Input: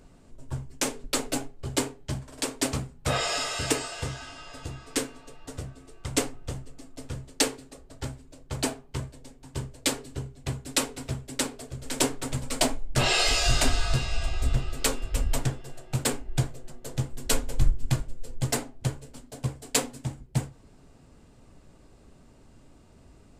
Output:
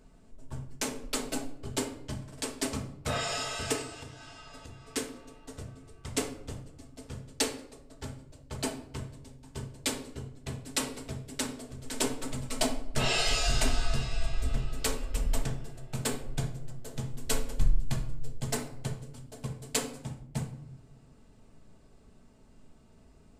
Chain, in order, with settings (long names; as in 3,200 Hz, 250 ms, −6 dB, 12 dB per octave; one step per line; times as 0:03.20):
0:03.81–0:04.95: downward compressor 10 to 1, threshold −37 dBFS, peak gain reduction 10.5 dB
rectangular room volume 2,000 cubic metres, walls furnished, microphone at 1.5 metres
level −6 dB